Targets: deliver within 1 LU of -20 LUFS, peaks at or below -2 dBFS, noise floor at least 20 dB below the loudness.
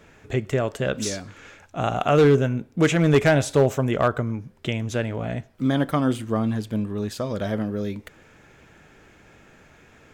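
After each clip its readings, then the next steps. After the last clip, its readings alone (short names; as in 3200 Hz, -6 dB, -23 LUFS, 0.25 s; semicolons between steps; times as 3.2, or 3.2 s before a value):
clipped 0.4%; flat tops at -10.5 dBFS; loudness -23.0 LUFS; peak -10.5 dBFS; loudness target -20.0 LUFS
-> clip repair -10.5 dBFS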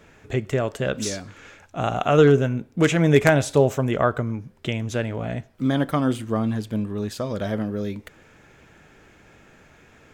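clipped 0.0%; loudness -22.5 LUFS; peak -1.5 dBFS; loudness target -20.0 LUFS
-> gain +2.5 dB; limiter -2 dBFS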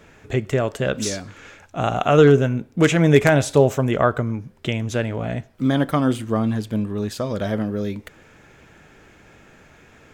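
loudness -20.5 LUFS; peak -2.0 dBFS; noise floor -51 dBFS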